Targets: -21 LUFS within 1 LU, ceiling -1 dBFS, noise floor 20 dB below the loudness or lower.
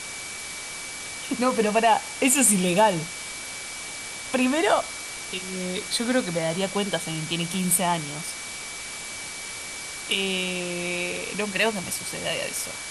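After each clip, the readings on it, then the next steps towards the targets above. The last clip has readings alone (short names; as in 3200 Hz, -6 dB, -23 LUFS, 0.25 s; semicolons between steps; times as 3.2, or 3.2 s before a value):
steady tone 2300 Hz; tone level -39 dBFS; noise floor -36 dBFS; noise floor target -46 dBFS; loudness -25.5 LUFS; peak -6.0 dBFS; loudness target -21.0 LUFS
-> notch 2300 Hz, Q 30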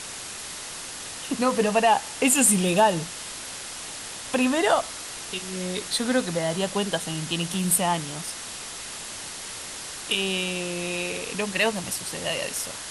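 steady tone none; noise floor -37 dBFS; noise floor target -46 dBFS
-> denoiser 9 dB, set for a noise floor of -37 dBFS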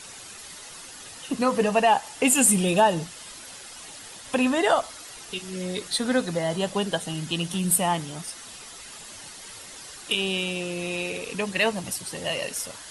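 noise floor -43 dBFS; noise floor target -45 dBFS
-> denoiser 6 dB, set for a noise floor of -43 dBFS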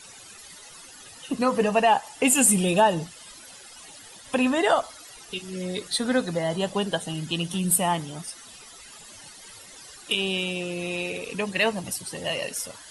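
noise floor -47 dBFS; loudness -24.5 LUFS; peak -6.5 dBFS; loudness target -21.0 LUFS
-> gain +3.5 dB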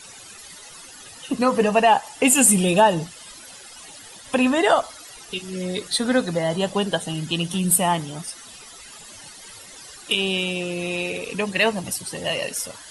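loudness -21.0 LUFS; peak -3.0 dBFS; noise floor -43 dBFS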